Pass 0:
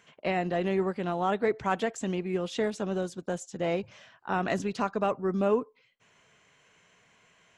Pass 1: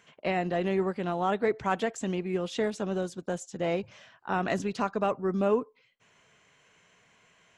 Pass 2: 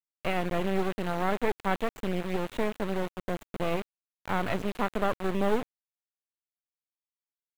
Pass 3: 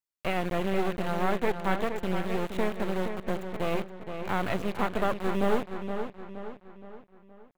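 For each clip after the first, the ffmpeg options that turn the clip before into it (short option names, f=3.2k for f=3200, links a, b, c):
-af anull
-filter_complex "[0:a]acrusher=bits=3:dc=4:mix=0:aa=0.000001,acrossover=split=5000[a][b];[b]acompressor=threshold=-53dB:ratio=4:attack=1:release=60[c];[a][c]amix=inputs=2:normalize=0,equalizer=f=5.2k:t=o:w=0.67:g=-9,volume=2.5dB"
-filter_complex "[0:a]asplit=2[a][b];[b]adelay=470,lowpass=f=4.3k:p=1,volume=-7.5dB,asplit=2[c][d];[d]adelay=470,lowpass=f=4.3k:p=1,volume=0.47,asplit=2[e][f];[f]adelay=470,lowpass=f=4.3k:p=1,volume=0.47,asplit=2[g][h];[h]adelay=470,lowpass=f=4.3k:p=1,volume=0.47,asplit=2[i][j];[j]adelay=470,lowpass=f=4.3k:p=1,volume=0.47[k];[a][c][e][g][i][k]amix=inputs=6:normalize=0"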